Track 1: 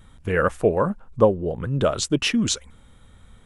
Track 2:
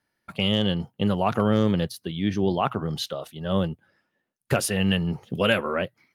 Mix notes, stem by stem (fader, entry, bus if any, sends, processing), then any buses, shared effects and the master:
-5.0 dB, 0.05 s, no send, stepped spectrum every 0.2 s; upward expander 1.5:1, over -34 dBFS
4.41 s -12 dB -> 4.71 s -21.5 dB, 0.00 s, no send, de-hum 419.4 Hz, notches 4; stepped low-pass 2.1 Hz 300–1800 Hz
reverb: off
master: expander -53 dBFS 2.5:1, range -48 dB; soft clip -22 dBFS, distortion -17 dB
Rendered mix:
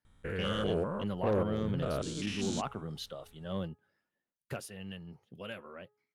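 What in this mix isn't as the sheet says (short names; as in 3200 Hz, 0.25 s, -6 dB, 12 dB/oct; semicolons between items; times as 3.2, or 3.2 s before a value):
stem 2: missing stepped low-pass 2.1 Hz 300–1800 Hz; master: missing expander -53 dBFS 2.5:1, range -48 dB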